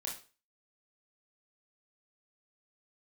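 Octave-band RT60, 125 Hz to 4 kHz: 0.35, 0.35, 0.40, 0.35, 0.35, 0.35 seconds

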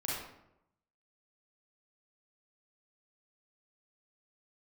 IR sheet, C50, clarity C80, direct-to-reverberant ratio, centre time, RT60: −1.5 dB, 3.5 dB, −6.5 dB, 70 ms, 0.85 s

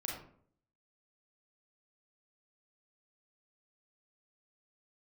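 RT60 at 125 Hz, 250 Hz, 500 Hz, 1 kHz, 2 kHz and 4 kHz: 0.70, 0.70, 0.65, 0.55, 0.45, 0.30 seconds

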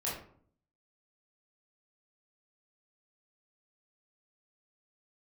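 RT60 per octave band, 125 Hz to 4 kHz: 0.80, 0.75, 0.60, 0.55, 0.40, 0.30 seconds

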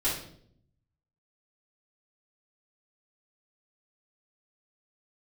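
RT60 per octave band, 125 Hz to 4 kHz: 1.2, 0.95, 0.75, 0.55, 0.50, 0.50 seconds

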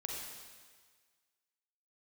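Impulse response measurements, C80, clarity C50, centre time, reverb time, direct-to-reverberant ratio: 1.5 dB, 0.0 dB, 88 ms, 1.6 s, −1.5 dB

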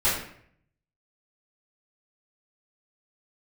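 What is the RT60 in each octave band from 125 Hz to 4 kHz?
0.95, 0.70, 0.65, 0.60, 0.65, 0.45 seconds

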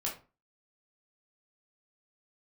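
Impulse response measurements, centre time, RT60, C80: 25 ms, 0.35 s, 15.0 dB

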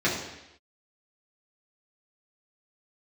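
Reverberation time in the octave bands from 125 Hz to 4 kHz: 0.80, 0.85, 0.90, 0.90, 0.95, 0.95 seconds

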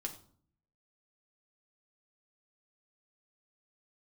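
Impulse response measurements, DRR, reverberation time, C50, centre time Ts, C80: 2.0 dB, 0.50 s, 12.0 dB, 12 ms, 15.5 dB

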